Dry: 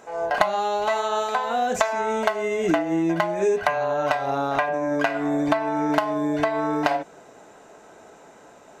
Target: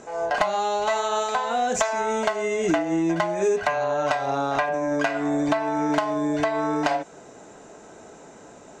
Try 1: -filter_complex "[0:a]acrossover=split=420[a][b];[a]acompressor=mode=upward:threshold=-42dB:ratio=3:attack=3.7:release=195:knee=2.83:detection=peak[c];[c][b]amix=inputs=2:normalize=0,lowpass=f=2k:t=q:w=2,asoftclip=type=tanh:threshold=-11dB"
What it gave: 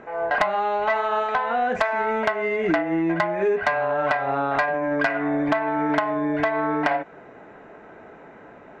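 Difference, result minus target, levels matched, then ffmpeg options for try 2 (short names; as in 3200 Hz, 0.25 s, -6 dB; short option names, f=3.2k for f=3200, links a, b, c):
8000 Hz band -19.0 dB
-filter_complex "[0:a]acrossover=split=420[a][b];[a]acompressor=mode=upward:threshold=-42dB:ratio=3:attack=3.7:release=195:knee=2.83:detection=peak[c];[c][b]amix=inputs=2:normalize=0,lowpass=f=7.3k:t=q:w=2,asoftclip=type=tanh:threshold=-11dB"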